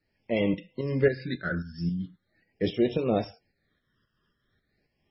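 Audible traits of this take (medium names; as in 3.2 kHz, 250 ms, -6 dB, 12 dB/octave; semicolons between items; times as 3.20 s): tremolo saw up 3.7 Hz, depth 60%; phasing stages 12, 0.42 Hz, lowest notch 730–1500 Hz; MP3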